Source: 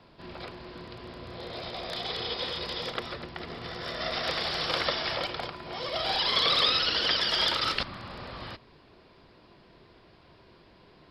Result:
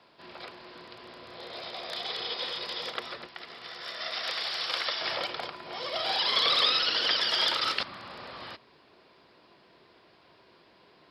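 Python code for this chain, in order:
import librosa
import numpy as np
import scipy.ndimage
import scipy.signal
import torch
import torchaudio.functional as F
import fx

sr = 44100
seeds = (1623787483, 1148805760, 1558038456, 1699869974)

y = fx.highpass(x, sr, hz=fx.steps((0.0, 600.0), (3.27, 1400.0), (5.01, 400.0)), slope=6)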